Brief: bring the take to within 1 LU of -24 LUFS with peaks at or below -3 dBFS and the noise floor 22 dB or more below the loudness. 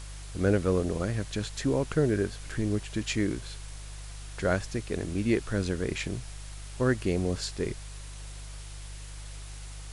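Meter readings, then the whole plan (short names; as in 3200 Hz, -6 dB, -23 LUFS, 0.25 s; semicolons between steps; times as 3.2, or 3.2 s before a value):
hum 50 Hz; harmonics up to 150 Hz; hum level -40 dBFS; noise floor -42 dBFS; noise floor target -52 dBFS; loudness -30.0 LUFS; peak -13.0 dBFS; loudness target -24.0 LUFS
-> de-hum 50 Hz, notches 3; denoiser 10 dB, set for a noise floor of -42 dBFS; gain +6 dB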